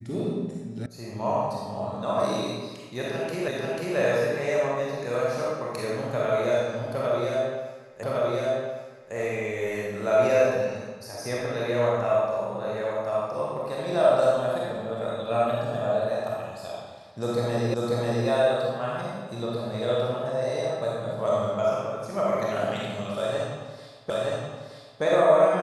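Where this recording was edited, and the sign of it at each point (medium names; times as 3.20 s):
0.86 s: sound stops dead
3.48 s: repeat of the last 0.49 s
8.03 s: repeat of the last 1.11 s
17.74 s: repeat of the last 0.54 s
24.10 s: repeat of the last 0.92 s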